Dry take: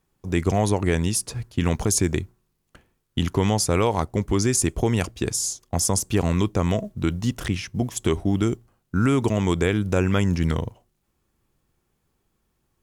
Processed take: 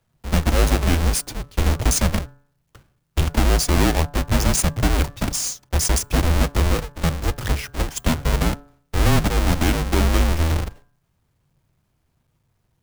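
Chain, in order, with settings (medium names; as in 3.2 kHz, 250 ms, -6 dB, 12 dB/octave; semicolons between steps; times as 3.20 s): square wave that keeps the level; de-hum 146.6 Hz, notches 13; frequency shift -160 Hz; trim -1.5 dB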